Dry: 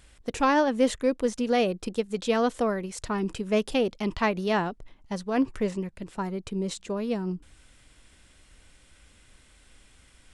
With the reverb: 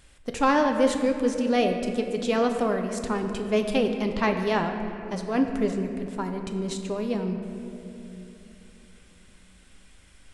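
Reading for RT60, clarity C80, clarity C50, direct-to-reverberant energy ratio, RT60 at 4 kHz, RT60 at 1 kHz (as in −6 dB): 2.9 s, 7.0 dB, 6.5 dB, 4.5 dB, 1.7 s, 2.5 s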